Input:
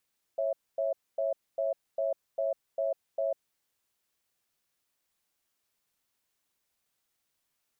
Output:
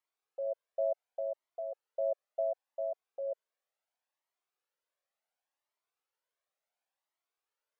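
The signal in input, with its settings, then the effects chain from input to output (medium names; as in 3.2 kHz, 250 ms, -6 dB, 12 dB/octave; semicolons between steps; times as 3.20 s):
cadence 550 Hz, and 659 Hz, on 0.15 s, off 0.25 s, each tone -29.5 dBFS 3.10 s
high-pass 510 Hz 24 dB/octave; tilt EQ -4 dB/octave; Shepard-style flanger rising 0.7 Hz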